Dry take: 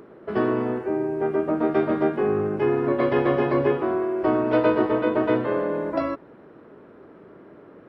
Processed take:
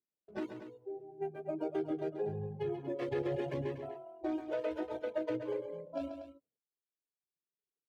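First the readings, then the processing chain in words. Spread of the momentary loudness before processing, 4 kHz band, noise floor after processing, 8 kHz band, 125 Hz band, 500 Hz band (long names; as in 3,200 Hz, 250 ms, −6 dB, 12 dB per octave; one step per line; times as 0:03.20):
5 LU, −12.5 dB, below −85 dBFS, can't be measured, −12.5 dB, −15.0 dB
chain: adaptive Wiener filter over 25 samples
noise reduction from a noise print of the clip's start 18 dB
noise gate −54 dBFS, range −29 dB
high-pass filter 59 Hz
reverb reduction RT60 1.4 s
parametric band 1,100 Hz −12.5 dB 0.41 octaves
brickwall limiter −20.5 dBFS, peak gain reduction 9 dB
flanger 0.82 Hz, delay 0.9 ms, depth 1.8 ms, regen −35%
on a send: multi-tap delay 136/239 ms −8.5/−11.5 dB
on the sum: level −3 dB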